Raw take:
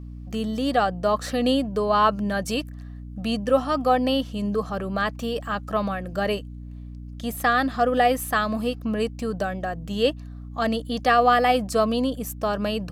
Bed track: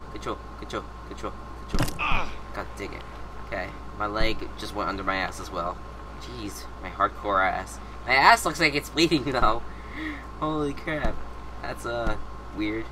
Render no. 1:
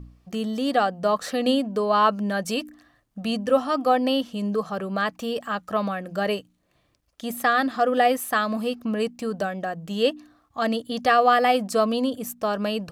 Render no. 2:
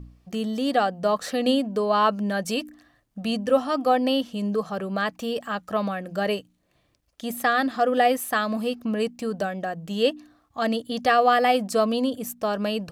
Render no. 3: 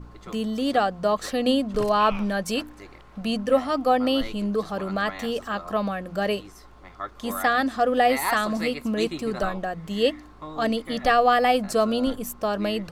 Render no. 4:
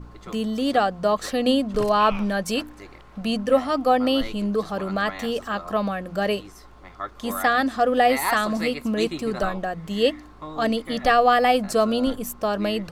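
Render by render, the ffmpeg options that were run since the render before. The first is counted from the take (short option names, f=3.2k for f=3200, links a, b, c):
-af "bandreject=f=60:t=h:w=4,bandreject=f=120:t=h:w=4,bandreject=f=180:t=h:w=4,bandreject=f=240:t=h:w=4,bandreject=f=300:t=h:w=4"
-af "equalizer=f=1.2k:t=o:w=0.6:g=-2.5"
-filter_complex "[1:a]volume=-10.5dB[a];[0:a][a]amix=inputs=2:normalize=0"
-af "volume=1.5dB"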